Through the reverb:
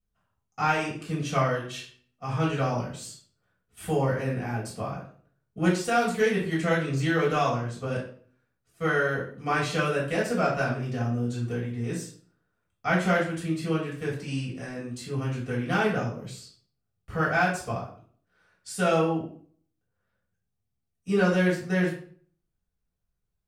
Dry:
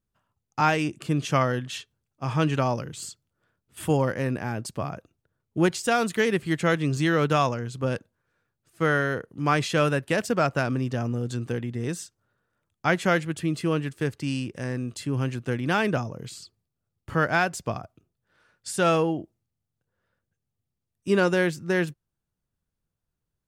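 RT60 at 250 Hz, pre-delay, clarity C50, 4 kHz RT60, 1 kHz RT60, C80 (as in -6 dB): 0.55 s, 3 ms, 5.5 dB, 0.40 s, 0.50 s, 10.5 dB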